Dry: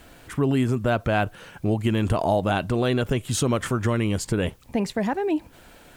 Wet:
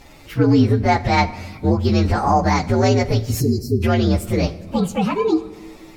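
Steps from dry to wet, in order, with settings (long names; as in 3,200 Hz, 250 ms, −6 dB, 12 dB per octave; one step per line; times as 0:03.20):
partials spread apart or drawn together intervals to 120%
time-frequency box erased 0:03.41–0:03.83, 470–4,000 Hz
rectangular room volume 1,300 cubic metres, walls mixed, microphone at 0.35 metres
treble cut that deepens with the level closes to 1,600 Hz, closed at −7.5 dBFS
level +8 dB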